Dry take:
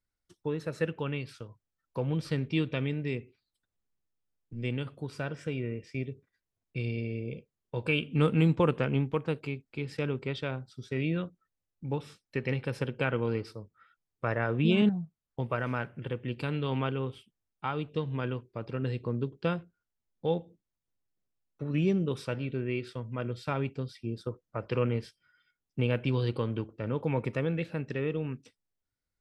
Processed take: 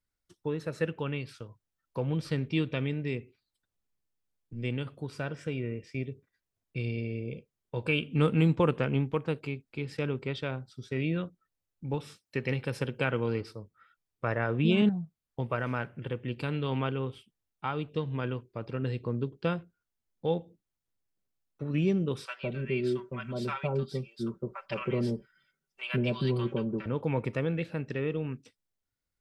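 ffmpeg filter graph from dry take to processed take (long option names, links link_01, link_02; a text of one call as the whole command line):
ffmpeg -i in.wav -filter_complex "[0:a]asettb=1/sr,asplit=3[link_01][link_02][link_03];[link_01]atrim=end=11.944[link_04];[link_02]atrim=start=11.94:end=13.41,asetpts=PTS-STARTPTS,afade=type=in:duration=0.004:curve=qsin,afade=type=out:start_time=1.466:duration=0.004:curve=qsin,highpass=46,highshelf=frequency=4500:gain=5.5[link_05];[link_03]atrim=start=13.406[link_06];[link_04][link_05]acrossfade=duration=0.004:curve1=hsin:curve2=qsin[link_07];[link_07][link_06]acrossfade=duration=0.004:curve1=qsin:curve2=hsin,asettb=1/sr,asplit=3[link_08][link_09][link_10];[link_08]atrim=end=22.264[link_11];[link_09]atrim=start=22.26:end=26.86,asetpts=PTS-STARTPTS,afade=type=in:duration=0.004:curve=qsin,afade=type=out:start_time=4.596:duration=0.004:curve=qsin,aecho=1:1:5.2:0.87,atrim=end_sample=202860,acrossover=split=880[link_12][link_13];[link_12]adelay=160[link_14];[link_14][link_13]amix=inputs=2:normalize=0,atrim=end_sample=202860[link_15];[link_10]atrim=start=26.856[link_16];[link_11][link_15]acrossfade=duration=0.004:curve1=hsin:curve2=qsin[link_17];[link_17][link_16]acrossfade=duration=0.004:curve1=qsin:curve2=hsin" out.wav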